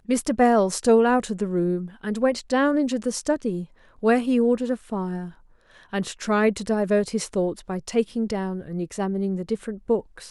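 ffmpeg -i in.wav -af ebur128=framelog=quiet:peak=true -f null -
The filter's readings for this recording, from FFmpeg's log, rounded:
Integrated loudness:
  I:         -23.8 LUFS
  Threshold: -34.0 LUFS
Loudness range:
  LRA:         4.2 LU
  Threshold: -44.5 LUFS
  LRA low:   -26.1 LUFS
  LRA high:  -21.8 LUFS
True peak:
  Peak:       -7.1 dBFS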